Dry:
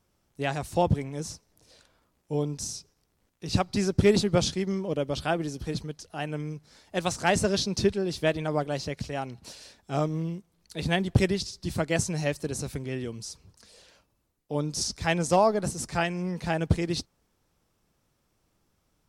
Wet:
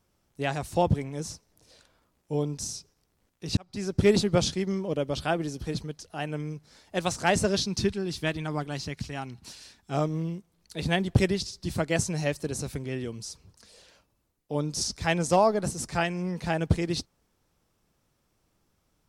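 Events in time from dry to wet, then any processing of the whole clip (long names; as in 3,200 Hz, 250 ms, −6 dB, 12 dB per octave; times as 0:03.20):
0:03.57–0:04.09: fade in
0:07.60–0:09.91: parametric band 550 Hz −10 dB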